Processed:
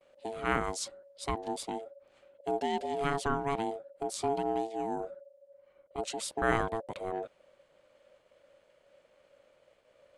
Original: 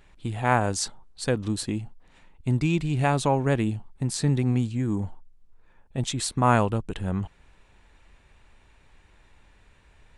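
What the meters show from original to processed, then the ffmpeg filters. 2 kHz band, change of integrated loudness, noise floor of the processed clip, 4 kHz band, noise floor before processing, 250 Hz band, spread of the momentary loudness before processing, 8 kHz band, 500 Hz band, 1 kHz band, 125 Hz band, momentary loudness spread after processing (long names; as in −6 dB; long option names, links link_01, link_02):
−5.0 dB, −8.0 dB, −68 dBFS, −7.5 dB, −58 dBFS, −11.5 dB, 11 LU, −8.5 dB, −4.0 dB, −5.0 dB, −19.5 dB, 11 LU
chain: -af "aeval=exprs='val(0)*sin(2*PI*560*n/s)':channel_layout=same,agate=range=-33dB:threshold=-57dB:ratio=3:detection=peak,volume=-5.5dB"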